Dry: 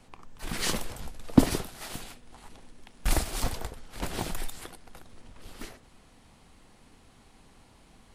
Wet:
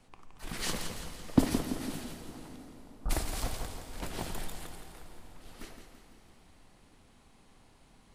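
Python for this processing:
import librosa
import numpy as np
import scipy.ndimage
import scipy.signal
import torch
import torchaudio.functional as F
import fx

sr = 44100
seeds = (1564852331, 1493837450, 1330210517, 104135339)

y = fx.ellip_lowpass(x, sr, hz=1300.0, order=4, stop_db=40, at=(2.56, 3.09), fade=0.02)
y = fx.echo_feedback(y, sr, ms=168, feedback_pct=47, wet_db=-8.0)
y = fx.rev_plate(y, sr, seeds[0], rt60_s=4.7, hf_ratio=0.75, predelay_ms=0, drr_db=8.5)
y = y * 10.0 ** (-5.5 / 20.0)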